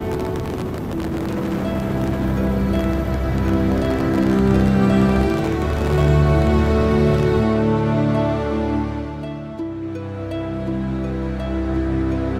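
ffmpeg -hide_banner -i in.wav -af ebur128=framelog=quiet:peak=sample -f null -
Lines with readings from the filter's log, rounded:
Integrated loudness:
  I:         -19.9 LUFS
  Threshold: -29.9 LUFS
Loudness range:
  LRA:         7.8 LU
  Threshold: -39.2 LUFS
  LRA low:   -24.8 LUFS
  LRA high:  -17.0 LUFS
Sample peak:
  Peak:       -4.3 dBFS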